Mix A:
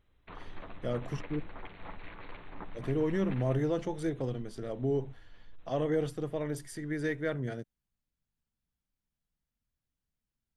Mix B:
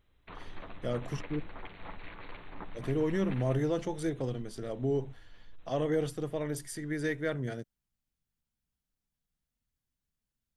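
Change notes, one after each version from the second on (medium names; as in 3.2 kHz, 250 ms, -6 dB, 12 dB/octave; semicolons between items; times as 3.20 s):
master: add treble shelf 4.1 kHz +6 dB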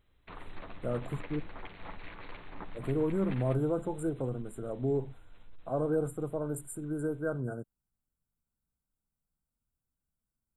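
speech: add brick-wall FIR band-stop 1.6–7.1 kHz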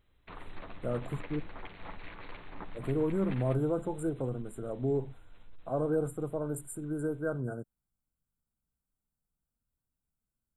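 no change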